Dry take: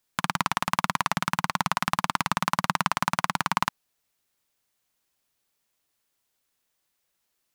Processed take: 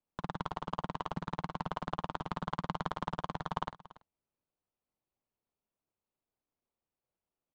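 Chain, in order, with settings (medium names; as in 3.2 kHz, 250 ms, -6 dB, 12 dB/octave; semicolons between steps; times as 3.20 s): median filter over 25 samples; distance through air 110 m; doubling 48 ms -12.5 dB; on a send: delay 285 ms -18.5 dB; on the sum: trim -6.5 dB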